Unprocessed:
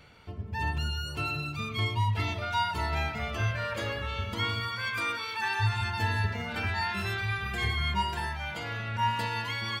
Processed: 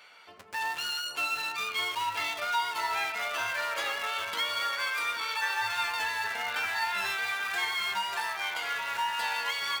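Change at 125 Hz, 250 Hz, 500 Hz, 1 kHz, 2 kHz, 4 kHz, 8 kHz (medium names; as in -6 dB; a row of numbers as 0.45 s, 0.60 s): under -30 dB, -16.0 dB, -3.0 dB, +0.5 dB, +2.5 dB, +3.0 dB, +7.5 dB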